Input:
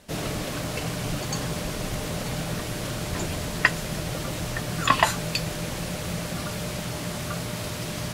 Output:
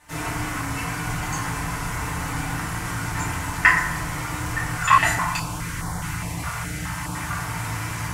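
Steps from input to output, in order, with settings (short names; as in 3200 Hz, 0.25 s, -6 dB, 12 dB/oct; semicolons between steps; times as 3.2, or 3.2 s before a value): graphic EQ 125/250/500/1000/2000/4000/8000 Hz -4/-7/-12/+7/+5/-7/+4 dB; FDN reverb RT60 1 s, low-frequency decay 1.45×, high-frequency decay 0.35×, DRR -8.5 dB; 4.77–7.15 stepped notch 4.8 Hz 300–2600 Hz; gain -5.5 dB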